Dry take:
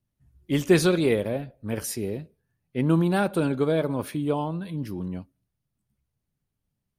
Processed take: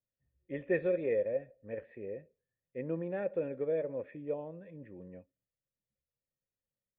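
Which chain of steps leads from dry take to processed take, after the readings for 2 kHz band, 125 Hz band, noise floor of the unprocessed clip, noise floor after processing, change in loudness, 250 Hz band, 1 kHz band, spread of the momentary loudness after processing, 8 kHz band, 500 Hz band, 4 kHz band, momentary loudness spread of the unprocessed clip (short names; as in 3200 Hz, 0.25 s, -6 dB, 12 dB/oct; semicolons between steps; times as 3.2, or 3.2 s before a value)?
-12.0 dB, -19.5 dB, -82 dBFS, under -85 dBFS, -10.5 dB, -16.5 dB, -19.5 dB, 18 LU, under -40 dB, -7.5 dB, under -30 dB, 13 LU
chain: vocal tract filter e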